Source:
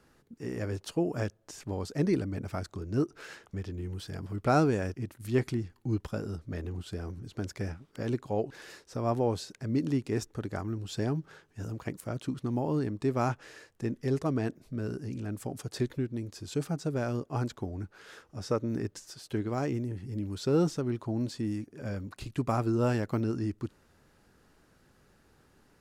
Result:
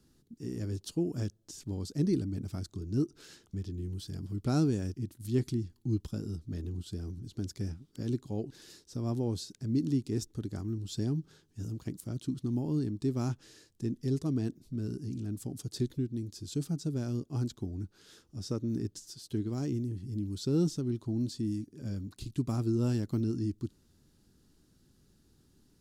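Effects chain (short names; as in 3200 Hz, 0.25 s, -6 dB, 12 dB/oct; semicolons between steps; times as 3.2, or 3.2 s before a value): band shelf 1100 Hz -13.5 dB 2.8 oct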